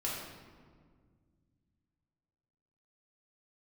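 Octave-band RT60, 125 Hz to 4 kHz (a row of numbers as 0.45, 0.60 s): 3.3, 2.9, 2.0, 1.6, 1.3, 1.0 s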